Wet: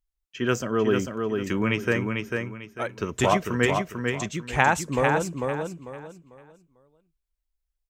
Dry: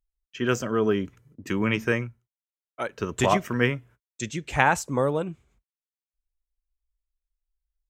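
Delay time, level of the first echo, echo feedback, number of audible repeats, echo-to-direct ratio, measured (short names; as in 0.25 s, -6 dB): 0.446 s, -4.5 dB, 28%, 3, -4.0 dB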